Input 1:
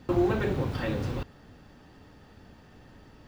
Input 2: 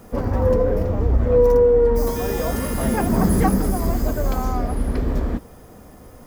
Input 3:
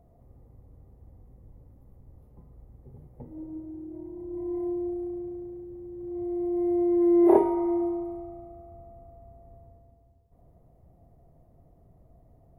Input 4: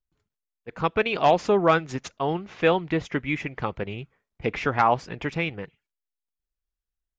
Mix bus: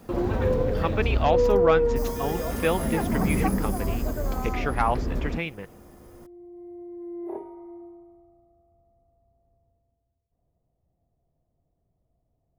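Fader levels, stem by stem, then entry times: −3.5, −6.5, −16.5, −4.0 decibels; 0.00, 0.00, 0.00, 0.00 seconds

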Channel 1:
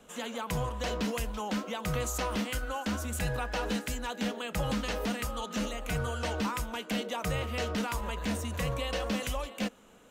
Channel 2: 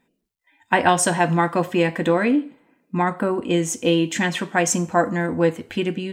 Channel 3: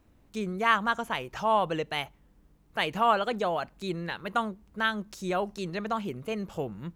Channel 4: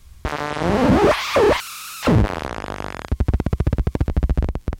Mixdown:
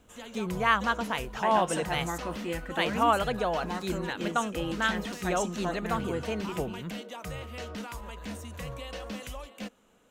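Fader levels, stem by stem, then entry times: −6.5 dB, −15.5 dB, −0.5 dB, muted; 0.00 s, 0.70 s, 0.00 s, muted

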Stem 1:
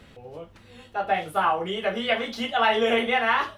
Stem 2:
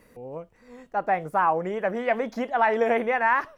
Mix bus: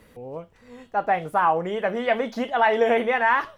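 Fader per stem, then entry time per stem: −9.5, +1.5 decibels; 0.00, 0.00 seconds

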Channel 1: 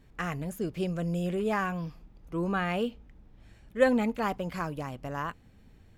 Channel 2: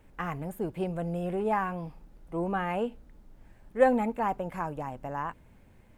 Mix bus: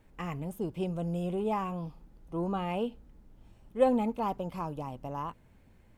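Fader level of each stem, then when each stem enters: −9.5, −4.5 decibels; 0.00, 0.00 seconds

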